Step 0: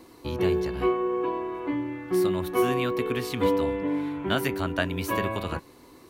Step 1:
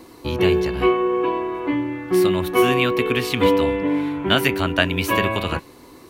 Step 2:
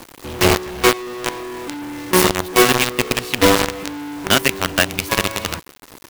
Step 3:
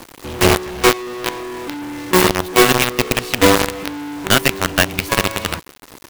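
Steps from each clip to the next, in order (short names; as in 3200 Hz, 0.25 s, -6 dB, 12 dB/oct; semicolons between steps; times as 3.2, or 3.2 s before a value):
dynamic EQ 2700 Hz, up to +7 dB, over -47 dBFS, Q 1.5; gain +6.5 dB
companded quantiser 2-bit; gain -4 dB
tracing distortion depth 0.066 ms; gain +1.5 dB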